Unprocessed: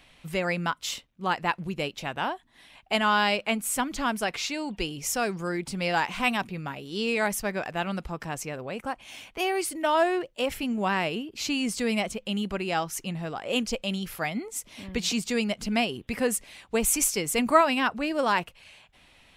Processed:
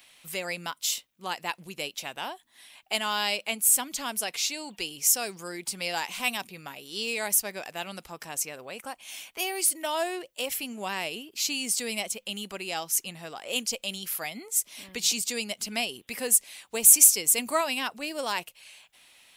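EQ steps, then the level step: RIAA curve recording; dynamic EQ 1400 Hz, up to -6 dB, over -39 dBFS, Q 1.2; -3.5 dB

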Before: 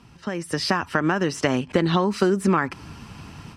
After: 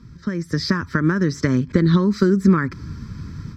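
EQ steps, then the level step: low shelf 290 Hz +11.5 dB; bell 7800 Hz +6 dB 0.2 oct; fixed phaser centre 2800 Hz, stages 6; 0.0 dB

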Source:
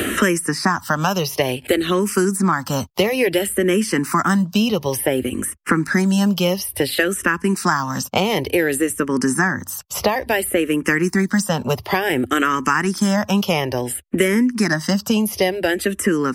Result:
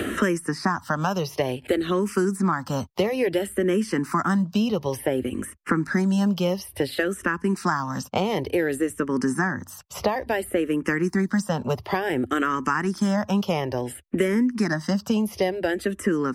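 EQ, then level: LPF 3400 Hz 6 dB/oct; dynamic EQ 2500 Hz, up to -5 dB, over -36 dBFS, Q 1.6; -4.5 dB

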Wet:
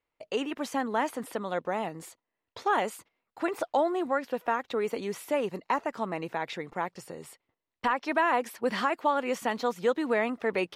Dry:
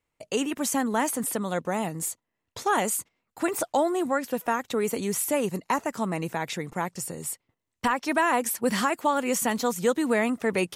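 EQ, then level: air absorption 360 m; tone controls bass -13 dB, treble +12 dB; low shelf 67 Hz +7.5 dB; 0.0 dB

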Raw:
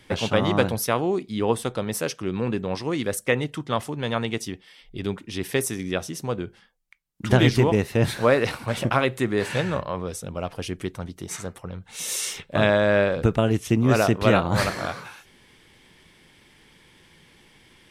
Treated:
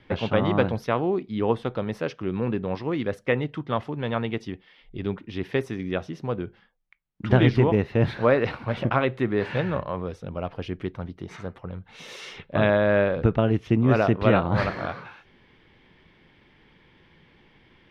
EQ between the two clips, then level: air absorption 300 m; 0.0 dB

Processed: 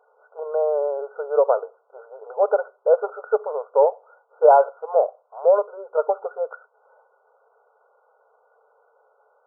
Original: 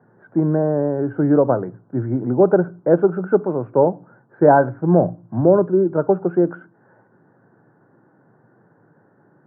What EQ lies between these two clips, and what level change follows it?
brick-wall FIR band-pass 420–1500 Hz; 0.0 dB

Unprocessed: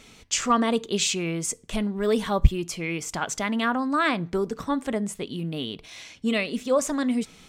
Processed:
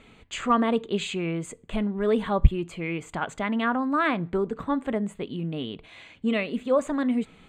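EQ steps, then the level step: running mean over 8 samples; 0.0 dB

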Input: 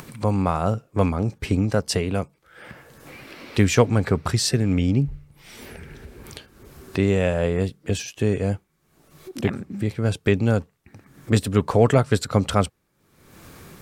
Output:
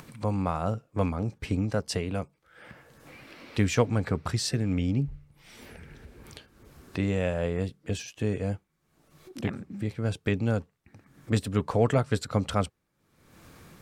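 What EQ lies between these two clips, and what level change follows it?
high shelf 10000 Hz -5.5 dB; notch 390 Hz, Q 12; -6.5 dB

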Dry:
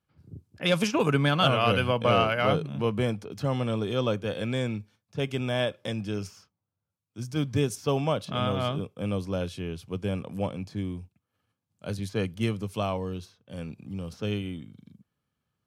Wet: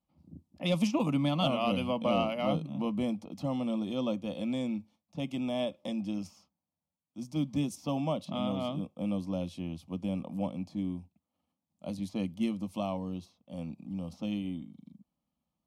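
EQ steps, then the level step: high shelf 2600 Hz -10 dB; dynamic EQ 750 Hz, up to -5 dB, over -37 dBFS, Q 0.9; fixed phaser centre 420 Hz, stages 6; +1.5 dB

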